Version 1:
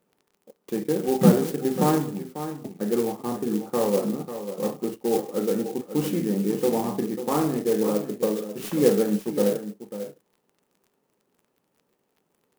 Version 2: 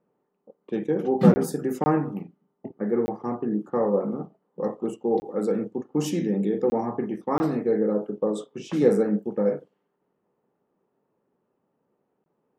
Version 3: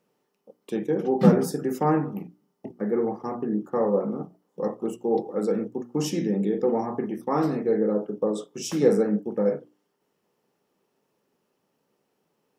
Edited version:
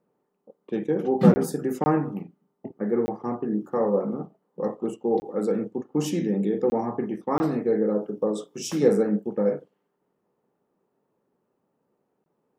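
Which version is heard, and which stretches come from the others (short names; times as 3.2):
2
3.45–4.09 from 3
7.78–8.88 from 3
not used: 1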